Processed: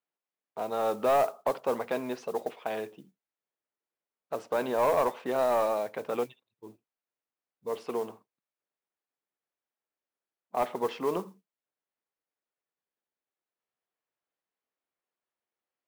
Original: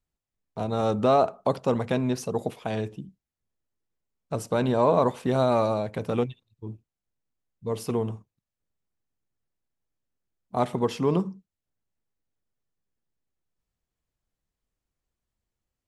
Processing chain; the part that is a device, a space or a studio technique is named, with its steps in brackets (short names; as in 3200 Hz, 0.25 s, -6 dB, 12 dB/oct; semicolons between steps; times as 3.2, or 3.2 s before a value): carbon microphone (BPF 450–2800 Hz; soft clip -17.5 dBFS, distortion -16 dB; modulation noise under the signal 23 dB); 7.75–10.61 HPF 110 Hz